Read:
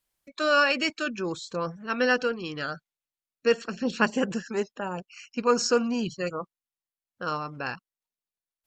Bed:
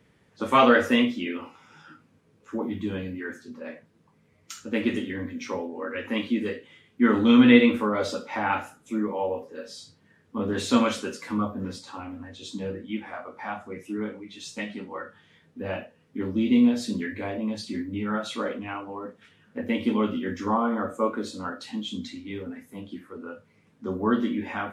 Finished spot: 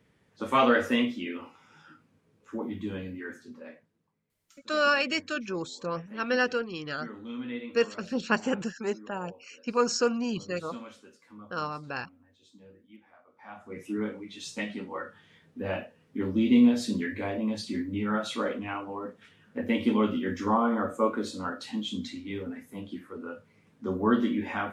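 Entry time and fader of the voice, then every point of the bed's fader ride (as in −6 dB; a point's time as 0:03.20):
4.30 s, −2.5 dB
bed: 0:03.51 −4.5 dB
0:04.37 −21.5 dB
0:13.27 −21.5 dB
0:13.81 −0.5 dB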